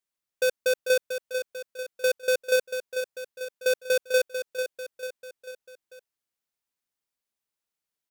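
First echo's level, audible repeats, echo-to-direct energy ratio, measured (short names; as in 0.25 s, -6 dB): -8.0 dB, 4, -6.5 dB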